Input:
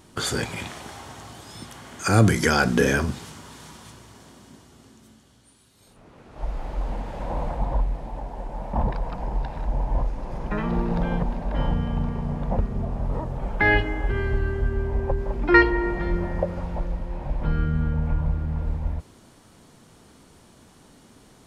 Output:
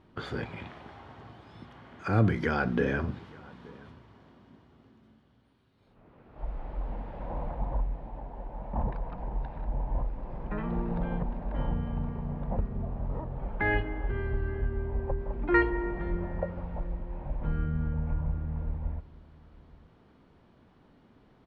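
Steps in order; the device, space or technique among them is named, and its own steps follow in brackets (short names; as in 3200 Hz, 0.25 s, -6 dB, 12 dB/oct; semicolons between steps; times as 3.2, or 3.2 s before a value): shout across a valley (air absorption 360 m; outdoor echo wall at 150 m, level -22 dB); gain -6.5 dB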